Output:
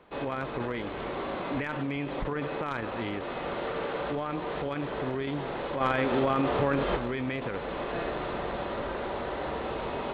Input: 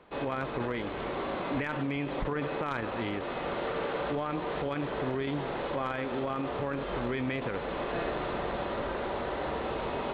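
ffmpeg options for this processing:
-filter_complex "[0:a]asplit=3[s0][s1][s2];[s0]afade=t=out:st=5.8:d=0.02[s3];[s1]acontrast=73,afade=t=in:st=5.8:d=0.02,afade=t=out:st=6.95:d=0.02[s4];[s2]afade=t=in:st=6.95:d=0.02[s5];[s3][s4][s5]amix=inputs=3:normalize=0"

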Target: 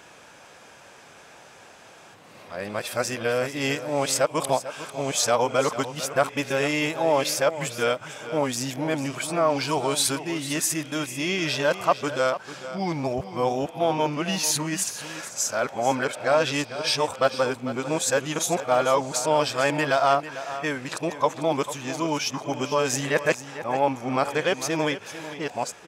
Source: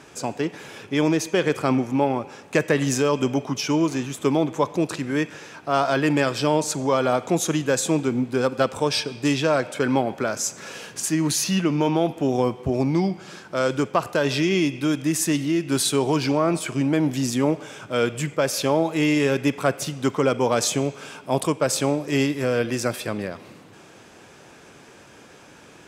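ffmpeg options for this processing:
-af "areverse,lowshelf=f=470:t=q:w=1.5:g=-6.5,aecho=1:1:447:0.224"

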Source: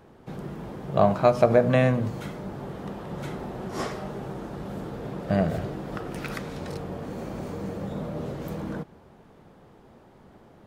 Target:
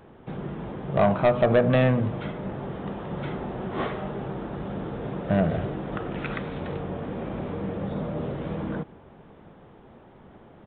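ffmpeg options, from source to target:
-filter_complex "[0:a]asplit=2[s0][s1];[s1]adelay=699.7,volume=0.0447,highshelf=f=4000:g=-15.7[s2];[s0][s2]amix=inputs=2:normalize=0,aresample=8000,asoftclip=type=tanh:threshold=0.178,aresample=44100,volume=1.33"

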